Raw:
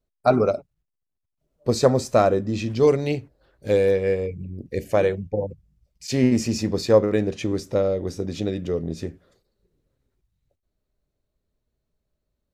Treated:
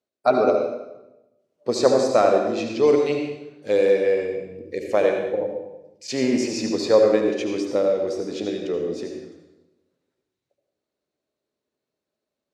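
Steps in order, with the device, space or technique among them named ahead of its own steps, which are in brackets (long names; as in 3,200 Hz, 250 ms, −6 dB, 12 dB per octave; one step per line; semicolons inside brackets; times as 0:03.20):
supermarket ceiling speaker (band-pass filter 290–6,900 Hz; convolution reverb RT60 1.0 s, pre-delay 68 ms, DRR 2.5 dB)
high-shelf EQ 9,500 Hz +3.5 dB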